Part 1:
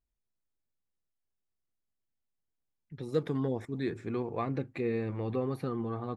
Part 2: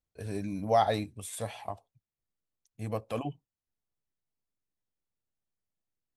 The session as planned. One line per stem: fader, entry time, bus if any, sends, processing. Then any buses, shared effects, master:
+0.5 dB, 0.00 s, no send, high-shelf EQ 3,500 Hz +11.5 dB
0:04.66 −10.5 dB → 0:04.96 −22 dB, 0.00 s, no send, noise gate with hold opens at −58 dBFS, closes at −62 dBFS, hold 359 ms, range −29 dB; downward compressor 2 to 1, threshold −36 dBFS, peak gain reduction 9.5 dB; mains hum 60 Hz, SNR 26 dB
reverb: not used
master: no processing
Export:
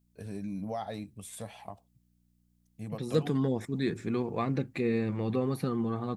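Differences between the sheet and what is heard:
stem 2 −10.5 dB → −4.0 dB
master: extra parametric band 190 Hz +8 dB 0.74 octaves

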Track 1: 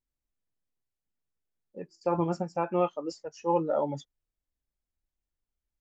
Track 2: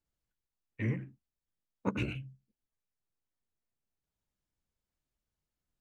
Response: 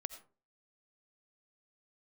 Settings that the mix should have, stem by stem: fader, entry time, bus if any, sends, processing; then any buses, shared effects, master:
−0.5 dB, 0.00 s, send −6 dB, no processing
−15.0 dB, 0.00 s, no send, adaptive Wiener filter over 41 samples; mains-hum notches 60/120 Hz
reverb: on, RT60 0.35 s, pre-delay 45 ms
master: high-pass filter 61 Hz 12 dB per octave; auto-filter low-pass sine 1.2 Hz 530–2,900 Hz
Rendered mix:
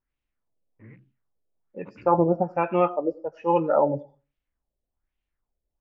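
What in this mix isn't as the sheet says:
stem 1: send −6 dB → 0 dB
master: missing high-pass filter 61 Hz 12 dB per octave

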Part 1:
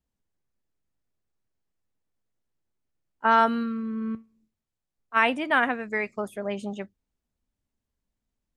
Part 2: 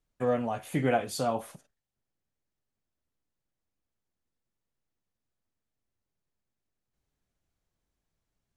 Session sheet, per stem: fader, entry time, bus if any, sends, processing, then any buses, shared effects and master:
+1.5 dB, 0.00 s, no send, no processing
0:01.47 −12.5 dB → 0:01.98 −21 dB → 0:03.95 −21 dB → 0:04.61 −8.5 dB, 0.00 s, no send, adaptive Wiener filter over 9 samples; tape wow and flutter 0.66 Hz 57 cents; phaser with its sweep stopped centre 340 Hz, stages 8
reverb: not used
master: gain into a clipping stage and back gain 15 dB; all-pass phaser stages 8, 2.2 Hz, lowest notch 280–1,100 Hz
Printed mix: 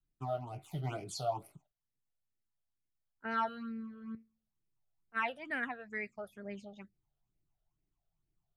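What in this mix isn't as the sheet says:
stem 1 +1.5 dB → −10.5 dB
stem 2 −12.5 dB → −1.5 dB

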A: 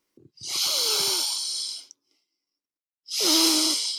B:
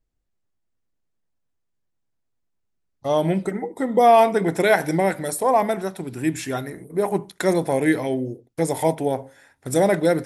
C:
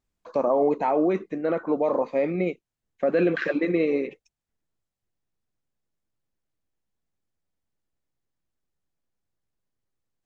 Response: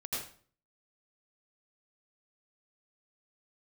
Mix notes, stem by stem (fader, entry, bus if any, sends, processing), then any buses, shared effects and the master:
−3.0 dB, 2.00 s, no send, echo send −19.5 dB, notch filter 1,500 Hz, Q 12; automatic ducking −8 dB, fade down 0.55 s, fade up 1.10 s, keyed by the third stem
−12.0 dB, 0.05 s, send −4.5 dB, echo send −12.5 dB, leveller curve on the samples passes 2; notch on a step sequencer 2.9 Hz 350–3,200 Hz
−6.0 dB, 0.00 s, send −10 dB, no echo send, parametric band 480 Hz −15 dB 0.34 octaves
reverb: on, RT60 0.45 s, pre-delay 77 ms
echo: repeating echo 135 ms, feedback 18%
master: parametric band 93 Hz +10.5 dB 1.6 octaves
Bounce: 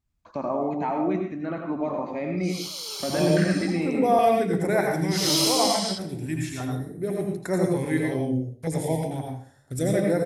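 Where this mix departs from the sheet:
stem B: missing leveller curve on the samples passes 2
reverb return +7.0 dB

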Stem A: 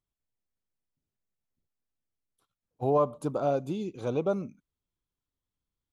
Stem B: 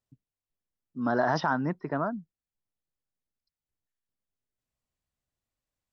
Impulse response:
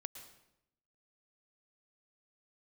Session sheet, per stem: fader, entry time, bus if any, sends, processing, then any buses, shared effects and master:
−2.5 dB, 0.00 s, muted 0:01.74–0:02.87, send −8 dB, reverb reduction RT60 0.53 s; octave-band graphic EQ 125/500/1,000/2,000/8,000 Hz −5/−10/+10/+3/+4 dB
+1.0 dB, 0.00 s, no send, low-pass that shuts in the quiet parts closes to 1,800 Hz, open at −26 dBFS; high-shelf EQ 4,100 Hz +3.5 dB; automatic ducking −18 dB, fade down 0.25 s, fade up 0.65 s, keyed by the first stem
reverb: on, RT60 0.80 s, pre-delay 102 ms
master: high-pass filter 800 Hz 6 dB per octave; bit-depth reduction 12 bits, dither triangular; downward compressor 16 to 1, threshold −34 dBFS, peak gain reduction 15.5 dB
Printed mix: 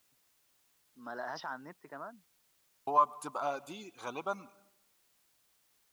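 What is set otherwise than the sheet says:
stem B +1.0 dB → −11.0 dB
master: missing downward compressor 16 to 1, threshold −34 dBFS, peak gain reduction 15.5 dB

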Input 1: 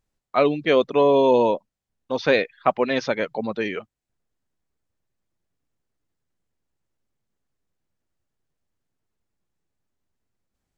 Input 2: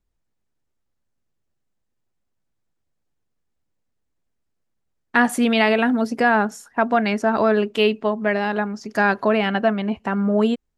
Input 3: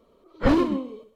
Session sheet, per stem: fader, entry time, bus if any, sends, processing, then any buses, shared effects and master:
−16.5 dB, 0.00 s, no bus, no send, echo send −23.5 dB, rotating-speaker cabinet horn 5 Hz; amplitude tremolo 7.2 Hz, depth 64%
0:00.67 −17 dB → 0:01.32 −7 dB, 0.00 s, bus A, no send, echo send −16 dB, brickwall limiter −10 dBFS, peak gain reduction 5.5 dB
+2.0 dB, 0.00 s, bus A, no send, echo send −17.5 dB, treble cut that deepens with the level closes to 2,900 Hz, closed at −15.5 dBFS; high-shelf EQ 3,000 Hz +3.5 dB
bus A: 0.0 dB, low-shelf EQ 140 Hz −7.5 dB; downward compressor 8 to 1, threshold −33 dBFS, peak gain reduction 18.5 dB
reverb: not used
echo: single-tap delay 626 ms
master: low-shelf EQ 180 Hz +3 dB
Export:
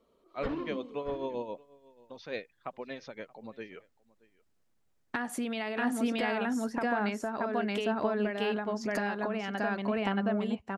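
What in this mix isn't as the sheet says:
stem 1: missing rotating-speaker cabinet horn 5 Hz
stem 2 −17.0 dB → −7.0 dB
stem 3 +2.0 dB → −9.5 dB

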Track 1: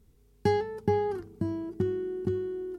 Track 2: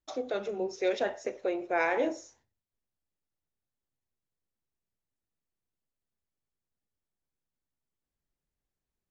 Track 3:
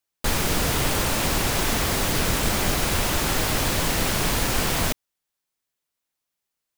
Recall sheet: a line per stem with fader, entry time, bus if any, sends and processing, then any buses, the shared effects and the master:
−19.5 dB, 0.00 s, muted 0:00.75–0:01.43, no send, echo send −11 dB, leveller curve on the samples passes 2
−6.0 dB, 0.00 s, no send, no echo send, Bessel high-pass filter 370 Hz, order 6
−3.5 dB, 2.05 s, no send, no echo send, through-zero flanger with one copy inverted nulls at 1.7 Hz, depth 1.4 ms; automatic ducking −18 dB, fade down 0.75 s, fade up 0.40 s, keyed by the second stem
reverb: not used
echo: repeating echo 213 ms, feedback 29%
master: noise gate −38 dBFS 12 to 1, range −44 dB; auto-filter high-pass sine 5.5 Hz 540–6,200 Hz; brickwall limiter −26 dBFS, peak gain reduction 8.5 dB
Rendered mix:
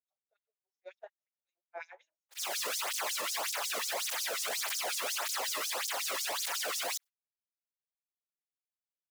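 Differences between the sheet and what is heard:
stem 1: muted
stem 2 −6.0 dB → −12.5 dB
stem 3 −3.5 dB → +3.5 dB

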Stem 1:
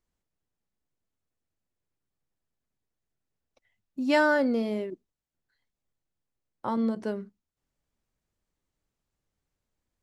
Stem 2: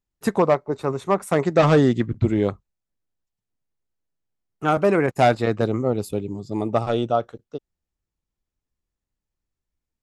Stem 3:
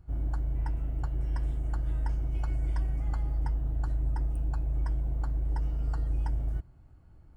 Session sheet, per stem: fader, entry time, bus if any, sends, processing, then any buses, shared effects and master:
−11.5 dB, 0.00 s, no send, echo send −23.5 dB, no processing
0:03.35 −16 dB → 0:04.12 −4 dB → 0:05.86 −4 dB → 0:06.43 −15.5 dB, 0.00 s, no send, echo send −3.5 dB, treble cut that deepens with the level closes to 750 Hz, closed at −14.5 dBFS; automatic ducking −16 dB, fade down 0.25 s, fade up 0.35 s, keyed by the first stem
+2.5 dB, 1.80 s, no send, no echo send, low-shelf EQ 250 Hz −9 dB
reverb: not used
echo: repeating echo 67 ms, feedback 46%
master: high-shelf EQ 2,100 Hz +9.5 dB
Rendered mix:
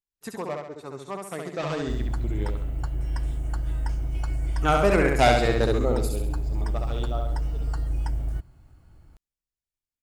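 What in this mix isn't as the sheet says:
stem 1: muted
stem 2: missing treble cut that deepens with the level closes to 750 Hz, closed at −14.5 dBFS
stem 3: missing low-shelf EQ 250 Hz −9 dB

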